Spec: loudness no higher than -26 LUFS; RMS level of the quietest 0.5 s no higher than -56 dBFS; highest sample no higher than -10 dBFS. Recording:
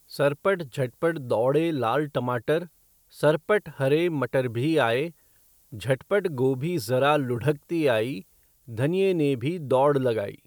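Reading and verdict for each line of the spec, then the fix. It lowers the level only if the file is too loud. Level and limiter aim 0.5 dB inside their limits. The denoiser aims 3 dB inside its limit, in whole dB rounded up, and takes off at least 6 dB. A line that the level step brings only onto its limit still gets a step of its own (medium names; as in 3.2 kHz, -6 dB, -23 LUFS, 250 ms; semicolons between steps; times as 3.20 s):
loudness -25.0 LUFS: fail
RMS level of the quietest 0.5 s -60 dBFS: pass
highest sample -9.0 dBFS: fail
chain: trim -1.5 dB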